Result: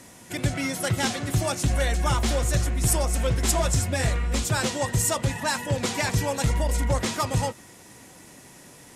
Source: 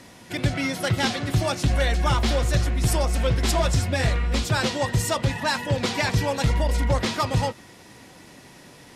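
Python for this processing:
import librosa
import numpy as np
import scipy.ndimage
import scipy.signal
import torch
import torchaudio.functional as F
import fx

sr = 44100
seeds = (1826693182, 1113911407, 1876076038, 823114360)

y = fx.high_shelf_res(x, sr, hz=5800.0, db=6.5, q=1.5)
y = y * librosa.db_to_amplitude(-2.0)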